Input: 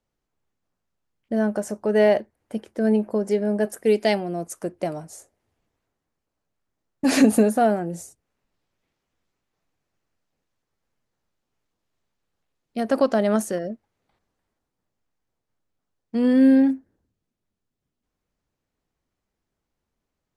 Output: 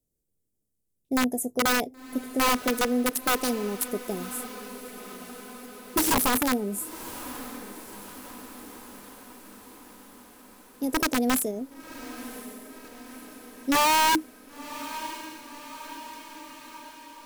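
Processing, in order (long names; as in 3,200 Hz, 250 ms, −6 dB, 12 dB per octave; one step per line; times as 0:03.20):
drawn EQ curve 120 Hz 0 dB, 390 Hz −1 dB, 1,100 Hz −28 dB, 8,900 Hz +10 dB
brickwall limiter −15.5 dBFS, peak gain reduction 8.5 dB
speed change +18%
wrap-around overflow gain 17.5 dB
feedback delay with all-pass diffusion 1,046 ms, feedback 62%, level −14 dB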